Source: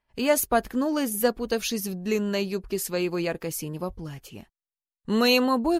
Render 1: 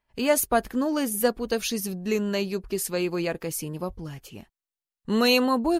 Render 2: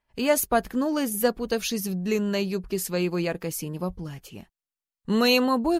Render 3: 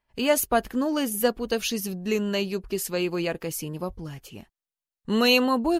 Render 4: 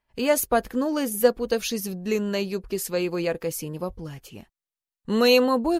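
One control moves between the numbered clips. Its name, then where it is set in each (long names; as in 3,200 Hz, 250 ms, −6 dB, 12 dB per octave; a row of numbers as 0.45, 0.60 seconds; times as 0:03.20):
dynamic equaliser, frequency: 9,100, 180, 2,900, 500 Hertz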